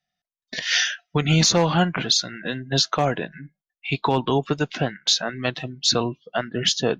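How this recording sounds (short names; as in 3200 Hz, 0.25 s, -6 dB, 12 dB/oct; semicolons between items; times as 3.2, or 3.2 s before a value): noise floor -93 dBFS; spectral tilt -3.5 dB/oct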